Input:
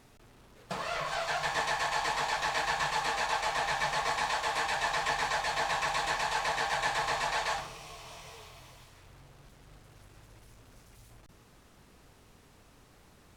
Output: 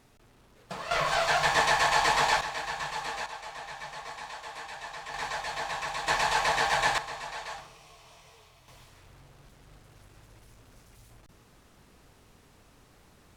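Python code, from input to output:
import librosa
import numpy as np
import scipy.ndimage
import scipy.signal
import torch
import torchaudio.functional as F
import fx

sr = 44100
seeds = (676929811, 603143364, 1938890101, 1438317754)

y = fx.gain(x, sr, db=fx.steps((0.0, -2.0), (0.91, 7.0), (2.41, -3.5), (3.26, -10.0), (5.14, -3.0), (6.08, 5.0), (6.98, -7.0), (8.68, 0.5)))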